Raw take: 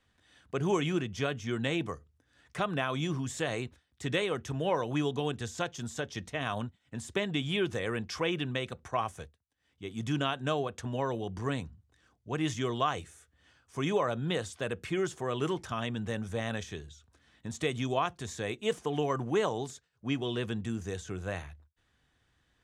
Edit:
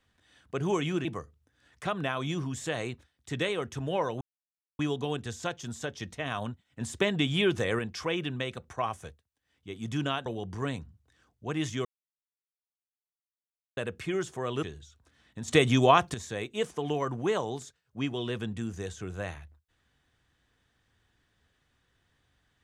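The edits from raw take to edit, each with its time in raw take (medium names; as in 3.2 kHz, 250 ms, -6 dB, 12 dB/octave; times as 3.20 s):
1.05–1.78 s: delete
4.94 s: insert silence 0.58 s
6.96–7.94 s: gain +4.5 dB
10.41–11.10 s: delete
12.69–14.61 s: mute
15.47–16.71 s: delete
17.56–18.22 s: gain +9.5 dB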